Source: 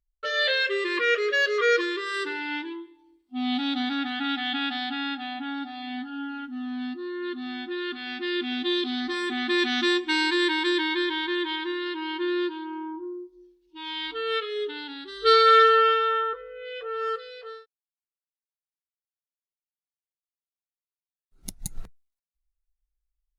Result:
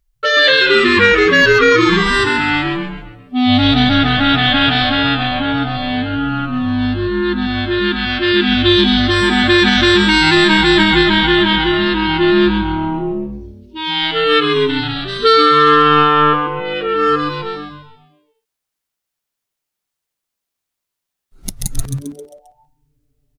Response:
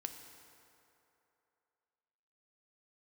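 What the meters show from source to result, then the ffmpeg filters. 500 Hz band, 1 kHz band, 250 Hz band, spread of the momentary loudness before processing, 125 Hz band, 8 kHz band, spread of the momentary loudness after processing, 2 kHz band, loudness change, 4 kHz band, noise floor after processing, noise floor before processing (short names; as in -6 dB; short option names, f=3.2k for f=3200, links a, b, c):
+11.5 dB, +11.0 dB, +15.0 dB, 15 LU, n/a, +13.5 dB, 14 LU, +13.5 dB, +12.5 dB, +14.0 dB, -81 dBFS, under -85 dBFS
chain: -filter_complex "[0:a]asplit=2[a][b];[b]asplit=6[c][d][e][f][g][h];[c]adelay=133,afreqshift=-150,volume=-6dB[i];[d]adelay=266,afreqshift=-300,volume=-12.7dB[j];[e]adelay=399,afreqshift=-450,volume=-19.5dB[k];[f]adelay=532,afreqshift=-600,volume=-26.2dB[l];[g]adelay=665,afreqshift=-750,volume=-33dB[m];[h]adelay=798,afreqshift=-900,volume=-39.7dB[n];[i][j][k][l][m][n]amix=inputs=6:normalize=0[o];[a][o]amix=inputs=2:normalize=0,alimiter=level_in=15.5dB:limit=-1dB:release=50:level=0:latency=1,volume=-1dB"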